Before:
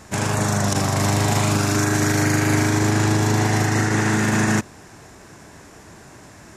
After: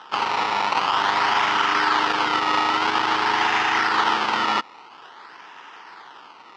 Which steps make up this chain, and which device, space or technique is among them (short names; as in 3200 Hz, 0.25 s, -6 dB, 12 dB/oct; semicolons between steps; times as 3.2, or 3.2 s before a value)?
circuit-bent sampling toy (decimation with a swept rate 19×, swing 100% 0.49 Hz; speaker cabinet 580–5200 Hz, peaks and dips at 610 Hz -9 dB, 910 Hz +10 dB, 1300 Hz +9 dB, 1900 Hz +4 dB, 3000 Hz +7 dB, 4900 Hz +4 dB)